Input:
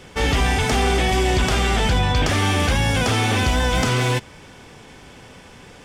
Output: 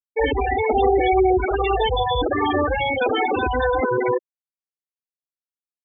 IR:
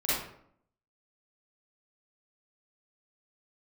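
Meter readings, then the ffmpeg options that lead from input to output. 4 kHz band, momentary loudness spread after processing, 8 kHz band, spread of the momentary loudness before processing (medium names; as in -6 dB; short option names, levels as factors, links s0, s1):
-7.5 dB, 4 LU, under -40 dB, 1 LU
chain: -filter_complex "[0:a]lowshelf=f=250:t=q:w=1.5:g=-10,asplit=2[s0][s1];[s1]adelay=68,lowpass=f=4000:p=1,volume=0.0794,asplit=2[s2][s3];[s3]adelay=68,lowpass=f=4000:p=1,volume=0.47,asplit=2[s4][s5];[s5]adelay=68,lowpass=f=4000:p=1,volume=0.47[s6];[s2][s4][s6]amix=inputs=3:normalize=0[s7];[s0][s7]amix=inputs=2:normalize=0,afftfilt=real='re*gte(hypot(re,im),0.282)':imag='im*gte(hypot(re,im),0.282)':win_size=1024:overlap=0.75,volume=1.68"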